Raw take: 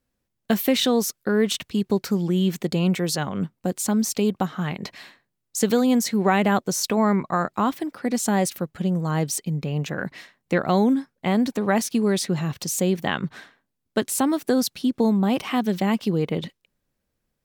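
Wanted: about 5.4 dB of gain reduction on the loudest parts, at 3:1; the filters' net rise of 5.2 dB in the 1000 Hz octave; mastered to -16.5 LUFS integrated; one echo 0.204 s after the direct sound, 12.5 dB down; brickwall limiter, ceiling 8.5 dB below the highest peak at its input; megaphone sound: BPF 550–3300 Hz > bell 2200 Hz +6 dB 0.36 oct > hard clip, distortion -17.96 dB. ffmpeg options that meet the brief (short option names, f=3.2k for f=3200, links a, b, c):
-af "equalizer=f=1k:t=o:g=7.5,acompressor=threshold=-20dB:ratio=3,alimiter=limit=-17dB:level=0:latency=1,highpass=550,lowpass=3.3k,equalizer=f=2.2k:t=o:w=0.36:g=6,aecho=1:1:204:0.237,asoftclip=type=hard:threshold=-22dB,volume=17dB"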